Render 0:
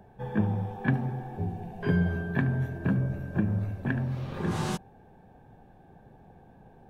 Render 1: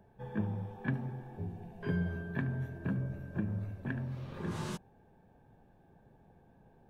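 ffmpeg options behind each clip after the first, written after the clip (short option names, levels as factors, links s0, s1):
-af "bandreject=f=760:w=12,volume=0.398"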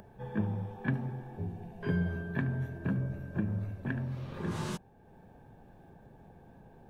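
-af "acompressor=mode=upward:threshold=0.00316:ratio=2.5,volume=1.33"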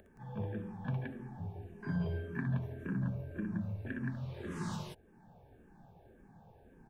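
-filter_complex "[0:a]aecho=1:1:61.22|172:0.562|0.794,asplit=2[s0][s1];[s1]afreqshift=-1.8[s2];[s0][s2]amix=inputs=2:normalize=1,volume=0.631"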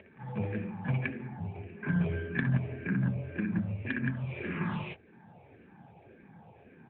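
-af "lowpass=f=2400:t=q:w=7,aeval=exprs='0.1*(cos(1*acos(clip(val(0)/0.1,-1,1)))-cos(1*PI/2))+0.0501*(cos(2*acos(clip(val(0)/0.1,-1,1)))-cos(2*PI/2))+0.0126*(cos(4*acos(clip(val(0)/0.1,-1,1)))-cos(4*PI/2))':c=same,volume=1.88" -ar 8000 -c:a libopencore_amrnb -b:a 10200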